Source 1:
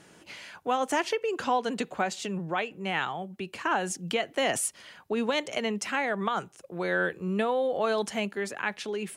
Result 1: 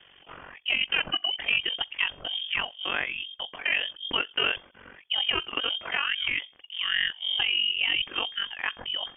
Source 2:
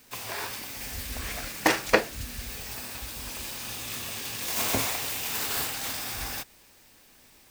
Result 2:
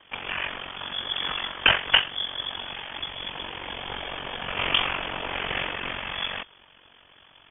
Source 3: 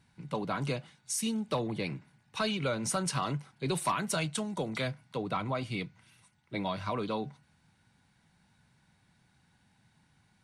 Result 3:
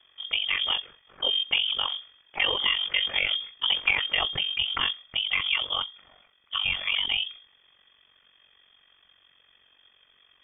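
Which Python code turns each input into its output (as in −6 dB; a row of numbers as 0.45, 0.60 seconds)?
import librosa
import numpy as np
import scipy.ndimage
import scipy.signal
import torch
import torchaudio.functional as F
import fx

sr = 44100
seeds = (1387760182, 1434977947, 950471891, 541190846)

y = np.clip(10.0 ** (17.5 / 20.0) * x, -1.0, 1.0) / 10.0 ** (17.5 / 20.0)
y = y * np.sin(2.0 * np.pi * 23.0 * np.arange(len(y)) / sr)
y = fx.hum_notches(y, sr, base_hz=60, count=3)
y = fx.freq_invert(y, sr, carrier_hz=3400)
y = y * 10.0 ** (-30 / 20.0) / np.sqrt(np.mean(np.square(y)))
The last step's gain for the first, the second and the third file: +3.5, +8.5, +9.5 decibels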